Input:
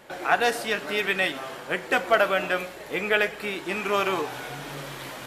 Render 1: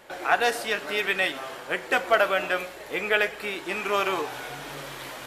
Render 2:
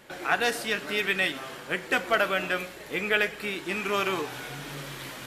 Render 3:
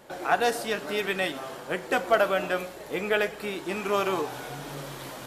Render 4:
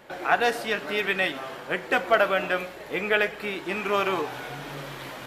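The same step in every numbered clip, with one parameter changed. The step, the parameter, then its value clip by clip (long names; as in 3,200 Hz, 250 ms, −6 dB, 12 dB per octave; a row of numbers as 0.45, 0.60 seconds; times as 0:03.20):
parametric band, centre frequency: 170, 720, 2,200, 9,000 Hertz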